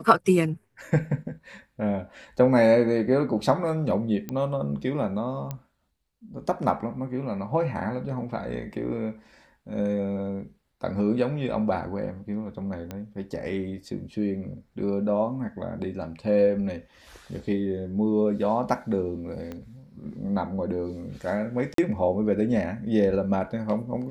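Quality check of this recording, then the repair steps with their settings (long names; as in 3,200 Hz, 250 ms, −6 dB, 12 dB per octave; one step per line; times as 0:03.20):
0:04.29: click −18 dBFS
0:05.51: click −18 dBFS
0:12.91: click −20 dBFS
0:19.52: click −23 dBFS
0:21.74–0:21.78: drop-out 43 ms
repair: click removal
repair the gap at 0:21.74, 43 ms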